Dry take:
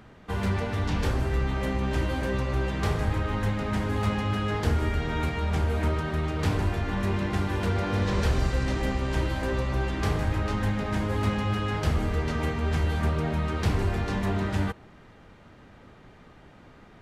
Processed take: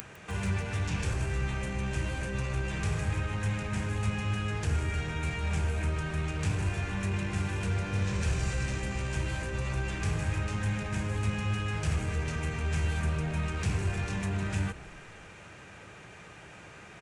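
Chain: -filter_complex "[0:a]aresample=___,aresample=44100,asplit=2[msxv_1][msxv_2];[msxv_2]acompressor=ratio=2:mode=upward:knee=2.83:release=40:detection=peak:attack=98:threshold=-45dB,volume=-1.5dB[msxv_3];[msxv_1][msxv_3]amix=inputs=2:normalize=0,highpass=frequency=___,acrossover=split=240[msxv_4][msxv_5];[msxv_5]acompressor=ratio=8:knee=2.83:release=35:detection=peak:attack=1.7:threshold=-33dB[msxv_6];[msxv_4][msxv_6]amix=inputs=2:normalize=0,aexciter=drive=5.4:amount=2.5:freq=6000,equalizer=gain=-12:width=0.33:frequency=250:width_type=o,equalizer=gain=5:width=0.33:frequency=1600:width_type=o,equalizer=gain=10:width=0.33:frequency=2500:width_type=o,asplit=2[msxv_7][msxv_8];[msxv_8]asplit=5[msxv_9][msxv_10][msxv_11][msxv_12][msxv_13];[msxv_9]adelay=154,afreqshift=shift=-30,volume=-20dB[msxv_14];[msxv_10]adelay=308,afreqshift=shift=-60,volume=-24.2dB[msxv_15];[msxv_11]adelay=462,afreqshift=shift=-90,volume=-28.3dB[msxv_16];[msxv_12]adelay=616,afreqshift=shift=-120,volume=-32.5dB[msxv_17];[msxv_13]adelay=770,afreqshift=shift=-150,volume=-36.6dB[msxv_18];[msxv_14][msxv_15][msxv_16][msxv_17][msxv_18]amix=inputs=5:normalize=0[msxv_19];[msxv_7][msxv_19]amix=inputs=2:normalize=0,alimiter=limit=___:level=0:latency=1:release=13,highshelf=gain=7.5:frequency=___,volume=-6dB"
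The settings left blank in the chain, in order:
22050, 75, -14dB, 4800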